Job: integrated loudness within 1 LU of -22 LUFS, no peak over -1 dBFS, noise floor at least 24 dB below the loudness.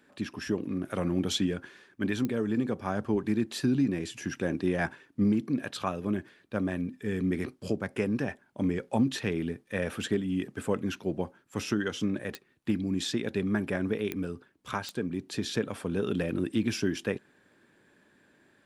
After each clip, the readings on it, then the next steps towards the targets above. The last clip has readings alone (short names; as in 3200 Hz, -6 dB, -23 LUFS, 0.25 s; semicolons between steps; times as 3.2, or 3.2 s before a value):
clicks 4; loudness -31.5 LUFS; peak -15.5 dBFS; loudness target -22.0 LUFS
-> de-click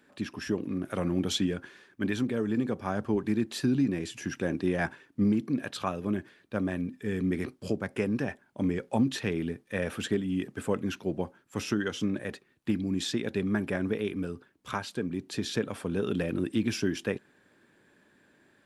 clicks 0; loudness -31.5 LUFS; peak -15.5 dBFS; loudness target -22.0 LUFS
-> gain +9.5 dB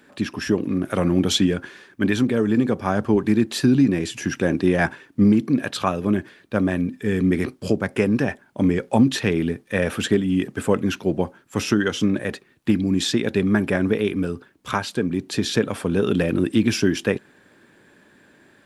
loudness -22.0 LUFS; peak -6.0 dBFS; noise floor -56 dBFS